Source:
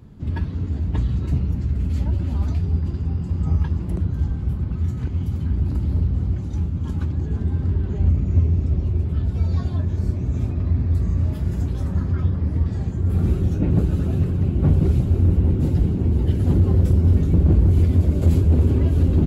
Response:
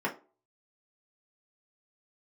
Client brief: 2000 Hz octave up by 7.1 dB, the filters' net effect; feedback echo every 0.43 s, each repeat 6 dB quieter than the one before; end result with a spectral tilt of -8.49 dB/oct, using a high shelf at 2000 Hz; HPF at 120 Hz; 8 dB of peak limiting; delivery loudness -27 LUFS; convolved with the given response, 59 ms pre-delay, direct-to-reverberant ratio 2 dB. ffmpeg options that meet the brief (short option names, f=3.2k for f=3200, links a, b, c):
-filter_complex "[0:a]highpass=120,highshelf=f=2k:g=7,equalizer=f=2k:t=o:g=5,alimiter=limit=-15.5dB:level=0:latency=1,aecho=1:1:430|860|1290|1720|2150|2580:0.501|0.251|0.125|0.0626|0.0313|0.0157,asplit=2[a][b];[1:a]atrim=start_sample=2205,adelay=59[c];[b][c]afir=irnorm=-1:irlink=0,volume=-10.5dB[d];[a][d]amix=inputs=2:normalize=0,volume=-3dB"